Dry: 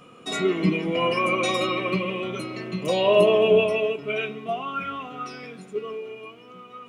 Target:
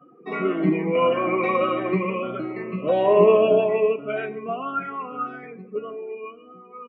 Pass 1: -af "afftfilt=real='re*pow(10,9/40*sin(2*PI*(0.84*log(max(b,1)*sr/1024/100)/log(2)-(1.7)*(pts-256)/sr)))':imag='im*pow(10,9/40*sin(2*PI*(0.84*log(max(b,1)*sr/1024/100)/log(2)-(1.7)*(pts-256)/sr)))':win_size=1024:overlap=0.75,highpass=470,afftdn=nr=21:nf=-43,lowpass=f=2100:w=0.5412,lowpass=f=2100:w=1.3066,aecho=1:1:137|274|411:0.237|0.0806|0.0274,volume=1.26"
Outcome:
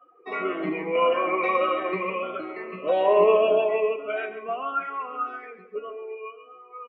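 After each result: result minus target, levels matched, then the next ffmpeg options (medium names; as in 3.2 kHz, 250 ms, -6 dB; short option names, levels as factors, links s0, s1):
125 Hz band -11.5 dB; echo-to-direct +10.5 dB
-af "afftfilt=real='re*pow(10,9/40*sin(2*PI*(0.84*log(max(b,1)*sr/1024/100)/log(2)-(1.7)*(pts-256)/sr)))':imag='im*pow(10,9/40*sin(2*PI*(0.84*log(max(b,1)*sr/1024/100)/log(2)-(1.7)*(pts-256)/sr)))':win_size=1024:overlap=0.75,highpass=170,afftdn=nr=21:nf=-43,lowpass=f=2100:w=0.5412,lowpass=f=2100:w=1.3066,aecho=1:1:137|274|411:0.237|0.0806|0.0274,volume=1.26"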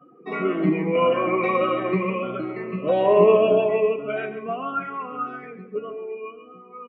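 echo-to-direct +10.5 dB
-af "afftfilt=real='re*pow(10,9/40*sin(2*PI*(0.84*log(max(b,1)*sr/1024/100)/log(2)-(1.7)*(pts-256)/sr)))':imag='im*pow(10,9/40*sin(2*PI*(0.84*log(max(b,1)*sr/1024/100)/log(2)-(1.7)*(pts-256)/sr)))':win_size=1024:overlap=0.75,highpass=170,afftdn=nr=21:nf=-43,lowpass=f=2100:w=0.5412,lowpass=f=2100:w=1.3066,aecho=1:1:137|274:0.0708|0.0241,volume=1.26"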